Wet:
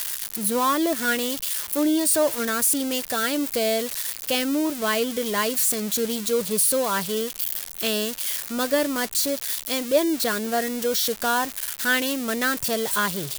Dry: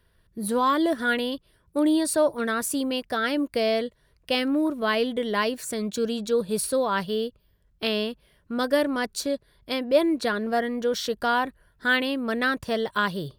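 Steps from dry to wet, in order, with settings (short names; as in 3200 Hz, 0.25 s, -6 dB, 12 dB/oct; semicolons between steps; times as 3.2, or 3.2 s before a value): switching spikes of -17.5 dBFS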